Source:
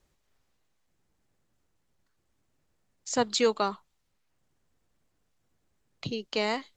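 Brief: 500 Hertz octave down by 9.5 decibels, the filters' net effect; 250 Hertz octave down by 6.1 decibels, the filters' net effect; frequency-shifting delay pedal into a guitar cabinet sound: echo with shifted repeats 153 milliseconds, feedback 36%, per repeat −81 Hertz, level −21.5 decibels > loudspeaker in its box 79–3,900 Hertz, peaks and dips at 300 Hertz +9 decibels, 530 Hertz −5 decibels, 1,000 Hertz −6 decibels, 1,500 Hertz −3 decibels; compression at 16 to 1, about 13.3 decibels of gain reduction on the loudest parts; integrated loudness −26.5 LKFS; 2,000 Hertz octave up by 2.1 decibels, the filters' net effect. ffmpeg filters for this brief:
ffmpeg -i in.wav -filter_complex "[0:a]equalizer=frequency=250:width_type=o:gain=-8,equalizer=frequency=500:width_type=o:gain=-7,equalizer=frequency=2000:width_type=o:gain=4,acompressor=threshold=-37dB:ratio=16,asplit=4[link_01][link_02][link_03][link_04];[link_02]adelay=153,afreqshift=-81,volume=-21.5dB[link_05];[link_03]adelay=306,afreqshift=-162,volume=-30.4dB[link_06];[link_04]adelay=459,afreqshift=-243,volume=-39.2dB[link_07];[link_01][link_05][link_06][link_07]amix=inputs=4:normalize=0,highpass=79,equalizer=frequency=300:width_type=q:width=4:gain=9,equalizer=frequency=530:width_type=q:width=4:gain=-5,equalizer=frequency=1000:width_type=q:width=4:gain=-6,equalizer=frequency=1500:width_type=q:width=4:gain=-3,lowpass=frequency=3900:width=0.5412,lowpass=frequency=3900:width=1.3066,volume=18.5dB" out.wav

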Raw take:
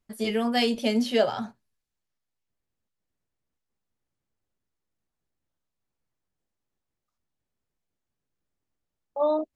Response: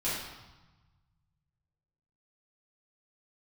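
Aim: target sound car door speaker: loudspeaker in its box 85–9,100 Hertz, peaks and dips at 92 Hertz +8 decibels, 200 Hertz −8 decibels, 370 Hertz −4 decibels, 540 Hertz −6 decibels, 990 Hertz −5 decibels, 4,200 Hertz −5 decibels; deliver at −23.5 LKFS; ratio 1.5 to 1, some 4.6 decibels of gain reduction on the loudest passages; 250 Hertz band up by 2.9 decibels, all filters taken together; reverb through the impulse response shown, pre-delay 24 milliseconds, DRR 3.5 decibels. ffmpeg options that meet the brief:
-filter_complex "[0:a]equalizer=frequency=250:width_type=o:gain=7,acompressor=threshold=-27dB:ratio=1.5,asplit=2[link_01][link_02];[1:a]atrim=start_sample=2205,adelay=24[link_03];[link_02][link_03]afir=irnorm=-1:irlink=0,volume=-11dB[link_04];[link_01][link_04]amix=inputs=2:normalize=0,highpass=85,equalizer=frequency=92:width_type=q:width=4:gain=8,equalizer=frequency=200:width_type=q:width=4:gain=-8,equalizer=frequency=370:width_type=q:width=4:gain=-4,equalizer=frequency=540:width_type=q:width=4:gain=-6,equalizer=frequency=990:width_type=q:width=4:gain=-5,equalizer=frequency=4200:width_type=q:width=4:gain=-5,lowpass=frequency=9100:width=0.5412,lowpass=frequency=9100:width=1.3066,volume=4.5dB"

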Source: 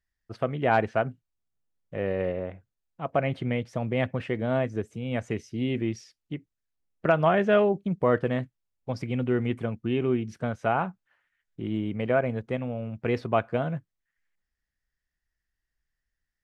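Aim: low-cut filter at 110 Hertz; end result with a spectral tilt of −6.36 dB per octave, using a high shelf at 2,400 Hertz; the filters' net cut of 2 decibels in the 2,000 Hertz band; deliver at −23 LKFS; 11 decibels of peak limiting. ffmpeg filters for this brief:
ffmpeg -i in.wav -af "highpass=110,equalizer=frequency=2000:width_type=o:gain=-6,highshelf=frequency=2400:gain=6.5,volume=9.5dB,alimiter=limit=-10.5dB:level=0:latency=1" out.wav

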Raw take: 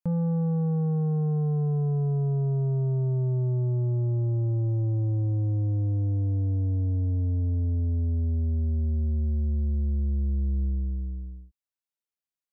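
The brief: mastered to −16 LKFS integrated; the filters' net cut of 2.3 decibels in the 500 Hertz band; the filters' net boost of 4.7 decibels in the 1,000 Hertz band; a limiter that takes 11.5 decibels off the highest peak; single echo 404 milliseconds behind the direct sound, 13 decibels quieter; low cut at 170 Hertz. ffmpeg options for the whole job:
ffmpeg -i in.wav -af "highpass=170,equalizer=frequency=500:width_type=o:gain=-4.5,equalizer=frequency=1000:width_type=o:gain=9,alimiter=level_in=9.5dB:limit=-24dB:level=0:latency=1,volume=-9.5dB,aecho=1:1:404:0.224,volume=24.5dB" out.wav

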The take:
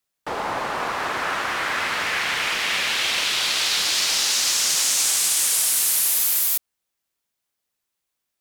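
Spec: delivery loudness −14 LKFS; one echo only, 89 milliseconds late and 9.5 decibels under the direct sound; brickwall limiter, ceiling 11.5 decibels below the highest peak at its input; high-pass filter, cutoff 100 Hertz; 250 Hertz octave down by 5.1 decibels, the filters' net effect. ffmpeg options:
ffmpeg -i in.wav -af "highpass=100,equalizer=frequency=250:width_type=o:gain=-7,alimiter=limit=-18dB:level=0:latency=1,aecho=1:1:89:0.335,volume=10.5dB" out.wav

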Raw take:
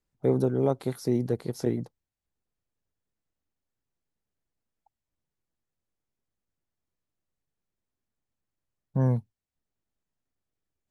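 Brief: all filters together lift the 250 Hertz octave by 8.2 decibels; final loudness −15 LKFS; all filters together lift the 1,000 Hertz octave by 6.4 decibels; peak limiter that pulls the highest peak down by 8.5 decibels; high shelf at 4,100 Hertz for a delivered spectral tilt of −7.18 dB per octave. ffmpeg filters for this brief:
ffmpeg -i in.wav -af "equalizer=frequency=250:width_type=o:gain=9,equalizer=frequency=1000:width_type=o:gain=7.5,highshelf=frequency=4100:gain=7.5,volume=11dB,alimiter=limit=-3.5dB:level=0:latency=1" out.wav

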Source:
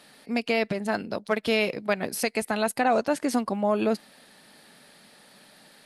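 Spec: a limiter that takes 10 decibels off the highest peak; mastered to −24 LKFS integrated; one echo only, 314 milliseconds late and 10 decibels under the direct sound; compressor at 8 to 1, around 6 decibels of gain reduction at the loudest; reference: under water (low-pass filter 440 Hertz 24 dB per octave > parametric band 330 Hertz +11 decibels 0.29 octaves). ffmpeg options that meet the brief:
ffmpeg -i in.wav -af "acompressor=threshold=-25dB:ratio=8,alimiter=level_in=1.5dB:limit=-24dB:level=0:latency=1,volume=-1.5dB,lowpass=frequency=440:width=0.5412,lowpass=frequency=440:width=1.3066,equalizer=frequency=330:width_type=o:width=0.29:gain=11,aecho=1:1:314:0.316,volume=12.5dB" out.wav

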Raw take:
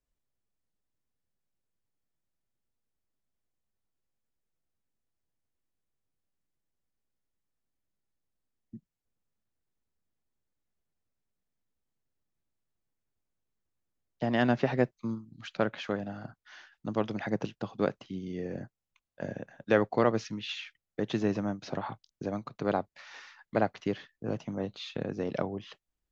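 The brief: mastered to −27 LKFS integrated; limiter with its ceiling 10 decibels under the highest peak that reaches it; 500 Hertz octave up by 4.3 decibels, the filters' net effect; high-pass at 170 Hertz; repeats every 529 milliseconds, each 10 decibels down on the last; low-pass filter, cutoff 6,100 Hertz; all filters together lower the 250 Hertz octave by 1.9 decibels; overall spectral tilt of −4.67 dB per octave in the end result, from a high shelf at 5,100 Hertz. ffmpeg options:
ffmpeg -i in.wav -af "highpass=170,lowpass=6100,equalizer=frequency=250:width_type=o:gain=-3,equalizer=frequency=500:width_type=o:gain=6,highshelf=frequency=5100:gain=-7,alimiter=limit=-18.5dB:level=0:latency=1,aecho=1:1:529|1058|1587|2116:0.316|0.101|0.0324|0.0104,volume=7.5dB" out.wav

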